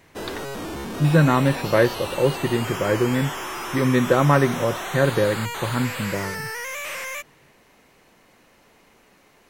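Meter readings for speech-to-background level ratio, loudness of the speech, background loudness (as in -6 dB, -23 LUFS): 9.0 dB, -21.5 LUFS, -30.5 LUFS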